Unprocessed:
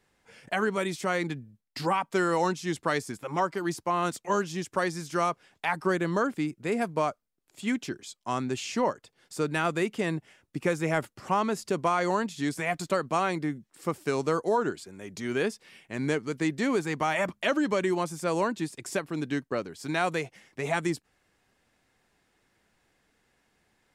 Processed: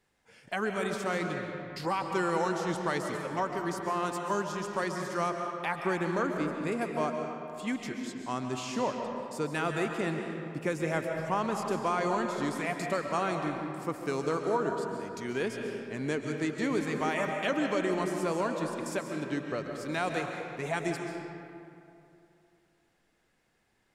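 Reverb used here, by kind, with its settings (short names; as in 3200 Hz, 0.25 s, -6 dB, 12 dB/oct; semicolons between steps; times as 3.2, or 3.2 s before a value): digital reverb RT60 2.7 s, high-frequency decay 0.55×, pre-delay 95 ms, DRR 3 dB; gain -4.5 dB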